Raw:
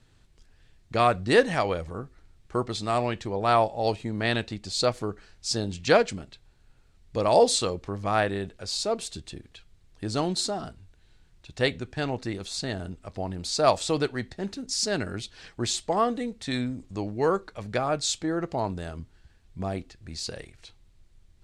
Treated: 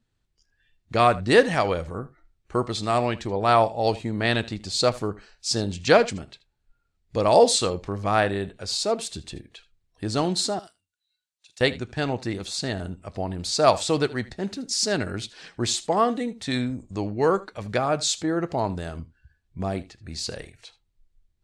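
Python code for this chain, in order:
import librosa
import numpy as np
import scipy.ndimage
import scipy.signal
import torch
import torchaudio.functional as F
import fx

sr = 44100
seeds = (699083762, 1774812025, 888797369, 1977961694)

y = fx.noise_reduce_blind(x, sr, reduce_db=18)
y = fx.differentiator(y, sr, at=(10.59, 11.61))
y = y + 10.0 ** (-19.0 / 20.0) * np.pad(y, (int(78 * sr / 1000.0), 0))[:len(y)]
y = F.gain(torch.from_numpy(y), 3.0).numpy()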